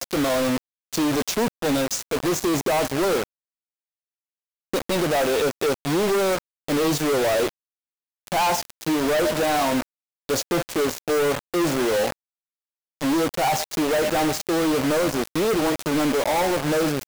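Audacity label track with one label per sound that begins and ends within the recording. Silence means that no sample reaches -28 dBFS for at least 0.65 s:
4.730000	7.490000	sound
8.270000	12.120000	sound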